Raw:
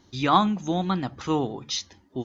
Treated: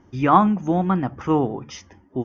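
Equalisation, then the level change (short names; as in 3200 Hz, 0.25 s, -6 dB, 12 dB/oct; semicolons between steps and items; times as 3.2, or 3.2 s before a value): running mean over 11 samples; +5.5 dB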